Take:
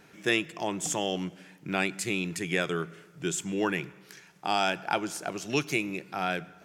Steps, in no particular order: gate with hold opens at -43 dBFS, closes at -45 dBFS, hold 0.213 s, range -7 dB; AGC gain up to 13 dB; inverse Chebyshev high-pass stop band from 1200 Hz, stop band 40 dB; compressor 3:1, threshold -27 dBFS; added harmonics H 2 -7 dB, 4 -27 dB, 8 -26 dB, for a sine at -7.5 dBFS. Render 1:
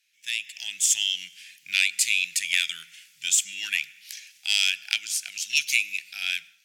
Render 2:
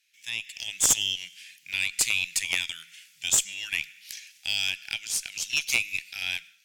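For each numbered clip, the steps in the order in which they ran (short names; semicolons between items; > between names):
added harmonics > inverse Chebyshev high-pass > compressor > AGC > gate with hold; compressor > AGC > gate with hold > inverse Chebyshev high-pass > added harmonics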